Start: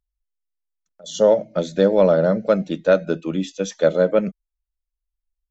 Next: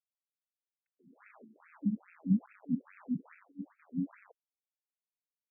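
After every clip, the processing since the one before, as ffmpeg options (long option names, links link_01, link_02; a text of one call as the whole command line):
ffmpeg -i in.wav -af "afftfilt=real='re*(1-between(b*sr/4096,290,3300))':imag='im*(1-between(b*sr/4096,290,3300))':win_size=4096:overlap=0.75,acrusher=bits=8:dc=4:mix=0:aa=0.000001,afftfilt=real='re*between(b*sr/1024,240*pow(1900/240,0.5+0.5*sin(2*PI*2.4*pts/sr))/1.41,240*pow(1900/240,0.5+0.5*sin(2*PI*2.4*pts/sr))*1.41)':imag='im*between(b*sr/1024,240*pow(1900/240,0.5+0.5*sin(2*PI*2.4*pts/sr))/1.41,240*pow(1900/240,0.5+0.5*sin(2*PI*2.4*pts/sr))*1.41)':win_size=1024:overlap=0.75" out.wav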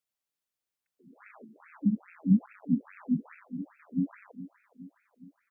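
ffmpeg -i in.wav -af "aecho=1:1:416|832|1248|1664|2080|2496:0.188|0.113|0.0678|0.0407|0.0244|0.0146,volume=5.5dB" out.wav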